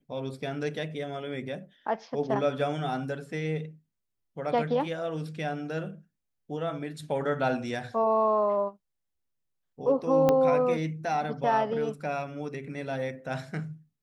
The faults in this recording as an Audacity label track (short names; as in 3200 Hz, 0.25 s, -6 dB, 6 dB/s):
10.290000	10.290000	pop -11 dBFS